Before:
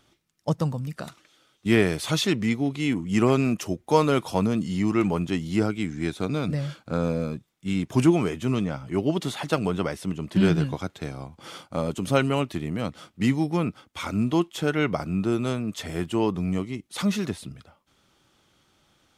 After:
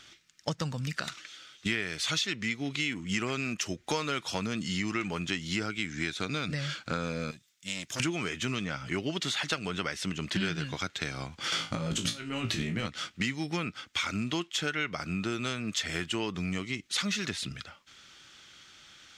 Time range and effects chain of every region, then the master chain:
7.31–8.00 s: pre-emphasis filter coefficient 0.8 + transformer saturation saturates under 900 Hz
11.52–12.87 s: bass shelf 340 Hz +8.5 dB + compressor with a negative ratio -26 dBFS, ratio -0.5 + flutter echo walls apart 3.1 m, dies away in 0.21 s
whole clip: high-order bell 3.2 kHz +13.5 dB 2.8 oct; compression 6:1, threshold -29 dBFS

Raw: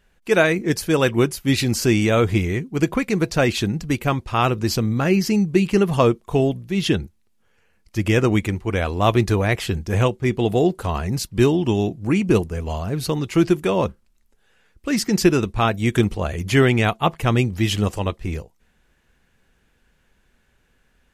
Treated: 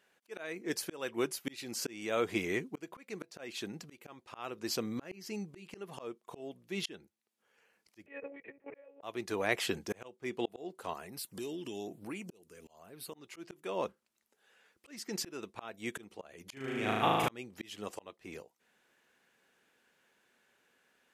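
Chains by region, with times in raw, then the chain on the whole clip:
8.06–9.03 s: cascade formant filter e + monotone LPC vocoder at 8 kHz 280 Hz
10.93–13.14 s: treble shelf 5.5 kHz +11 dB + compression 8:1, threshold -28 dBFS + LFO notch sine 1.1 Hz 730–7100 Hz
16.53–17.29 s: bass shelf 220 Hz +8 dB + compression 16:1, threshold -14 dBFS + flutter echo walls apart 6.4 m, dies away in 1.2 s
whole clip: high-pass 330 Hz 12 dB/octave; slow attack 762 ms; trim -4.5 dB

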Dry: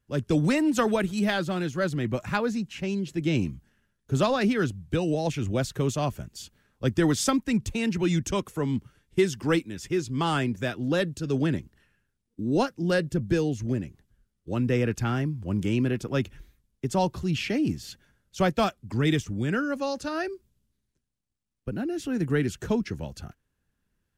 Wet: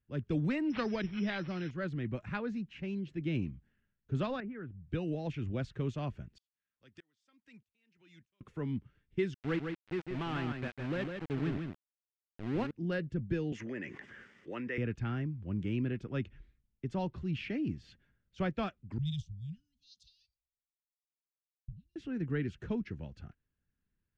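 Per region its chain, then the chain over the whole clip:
0.70–1.71 s: careless resampling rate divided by 8×, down none, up zero stuff + inverse Chebyshev low-pass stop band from 10 kHz, stop band 60 dB
4.40–4.89 s: low-pass 2 kHz 24 dB/octave + compression 2:1, threshold -38 dBFS
6.38–8.41 s: tilt EQ +4 dB/octave + compression 2:1, threshold -49 dBFS + sawtooth tremolo in dB swelling 1.6 Hz, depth 35 dB
9.34–12.71 s: low-pass 3.3 kHz + small samples zeroed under -27 dBFS + delay 154 ms -5.5 dB
13.52–14.78 s: cabinet simulation 490–8400 Hz, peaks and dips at 710 Hz -3 dB, 1.9 kHz +9 dB, 4.1 kHz -10 dB + level flattener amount 70%
18.98–21.96 s: Chebyshev band-stop 170–3500 Hz, order 4 + peaking EQ 320 Hz -9 dB 1.9 oct + three bands expanded up and down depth 100%
whole clip: Chebyshev low-pass 2.2 kHz, order 2; peaking EQ 830 Hz -7.5 dB 2.1 oct; trim -6 dB

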